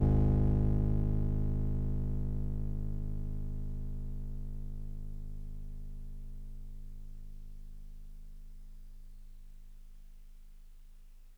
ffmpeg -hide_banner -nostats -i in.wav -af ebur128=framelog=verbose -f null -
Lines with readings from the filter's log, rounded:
Integrated loudness:
  I:         -35.8 LUFS
  Threshold: -48.8 LUFS
Loudness range:
  LRA:        22.5 LU
  Threshold: -61.5 LUFS
  LRA low:   -57.2 LUFS
  LRA high:  -34.6 LUFS